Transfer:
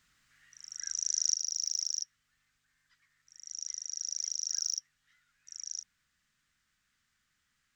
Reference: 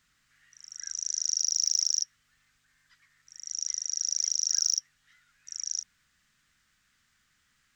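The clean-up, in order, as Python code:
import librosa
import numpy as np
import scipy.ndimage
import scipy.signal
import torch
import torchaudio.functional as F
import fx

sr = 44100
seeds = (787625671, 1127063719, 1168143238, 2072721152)

y = fx.gain(x, sr, db=fx.steps((0.0, 0.0), (1.34, 7.0)))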